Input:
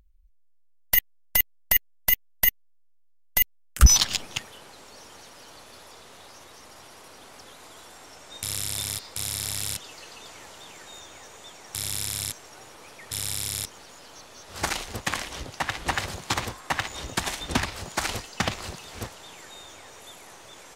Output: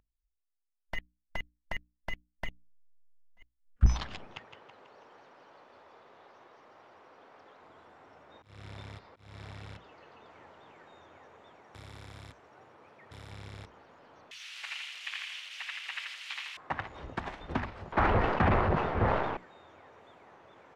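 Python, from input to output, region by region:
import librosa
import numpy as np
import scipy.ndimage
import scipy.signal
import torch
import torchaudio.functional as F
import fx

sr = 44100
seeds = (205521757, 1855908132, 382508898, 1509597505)

y = fx.chain(x, sr, fx.law_mismatch(coded='mu'),
    fx.auto_swell(attack_ms=377.0),
    fx.env_flanger(rest_ms=4.6, full_db=-19.0), at=(2.45, 3.83))
y = fx.chain(y, sr, fx.lowpass(hz=8100.0, slope=12),
    fx.bass_treble(bass_db=-8, treble_db=2),
    fx.echo_feedback(ms=163, feedback_pct=51, wet_db=-9), at=(4.34, 7.62))
y = fx.chain(y, sr, fx.high_shelf(hz=10000.0, db=-8.5),
    fx.auto_swell(attack_ms=246.0), at=(8.23, 10.3))
y = fx.chain(y, sr, fx.tube_stage(drive_db=17.0, bias=0.4),
    fx.high_shelf(hz=11000.0, db=11.0), at=(11.61, 13.31))
y = fx.chain(y, sr, fx.crossing_spikes(level_db=-16.5),
    fx.highpass_res(hz=2700.0, q=2.7),
    fx.echo_feedback(ms=83, feedback_pct=45, wet_db=-4.0), at=(14.31, 16.57))
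y = fx.chain(y, sr, fx.lowpass(hz=1900.0, slope=12),
    fx.leveller(passes=5),
    fx.sustainer(db_per_s=35.0), at=(17.92, 19.37))
y = scipy.signal.sosfilt(scipy.signal.butter(2, 1600.0, 'lowpass', fs=sr, output='sos'), y)
y = fx.noise_reduce_blind(y, sr, reduce_db=21)
y = fx.hum_notches(y, sr, base_hz=60, count=5)
y = F.gain(torch.from_numpy(y), -5.5).numpy()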